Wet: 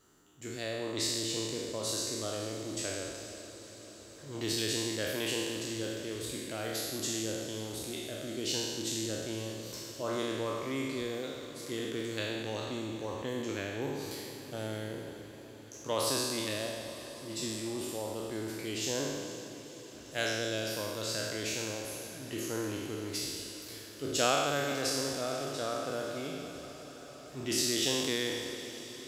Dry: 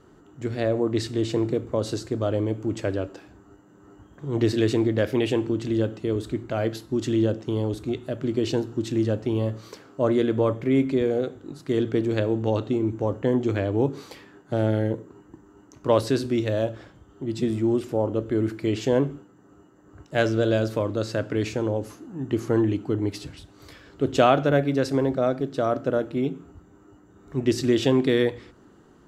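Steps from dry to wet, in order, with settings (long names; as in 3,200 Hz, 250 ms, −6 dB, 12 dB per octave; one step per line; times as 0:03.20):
peak hold with a decay on every bin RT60 1.70 s
first-order pre-emphasis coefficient 0.9
feedback delay with all-pass diffusion 478 ms, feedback 73%, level −14 dB
level +2.5 dB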